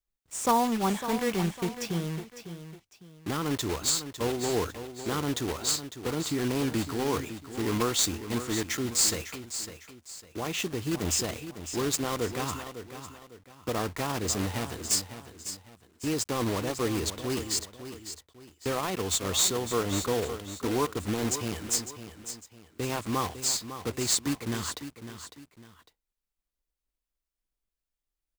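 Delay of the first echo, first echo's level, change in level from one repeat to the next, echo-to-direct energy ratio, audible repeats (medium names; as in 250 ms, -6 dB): 553 ms, -11.0 dB, -9.0 dB, -10.5 dB, 2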